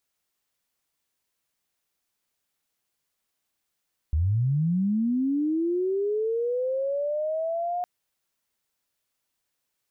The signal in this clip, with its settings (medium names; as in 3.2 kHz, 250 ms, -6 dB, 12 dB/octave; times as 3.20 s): sweep linear 71 Hz -> 720 Hz -20 dBFS -> -25.5 dBFS 3.71 s